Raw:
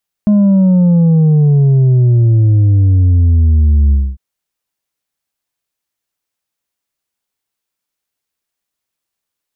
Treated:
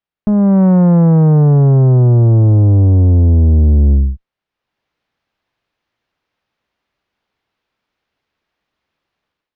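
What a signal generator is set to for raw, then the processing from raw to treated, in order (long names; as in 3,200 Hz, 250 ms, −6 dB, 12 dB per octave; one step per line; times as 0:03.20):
bass drop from 210 Hz, over 3.90 s, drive 4 dB, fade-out 0.25 s, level −6.5 dB
automatic gain control gain up to 15 dB
tube saturation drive 6 dB, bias 0.5
high-frequency loss of the air 280 metres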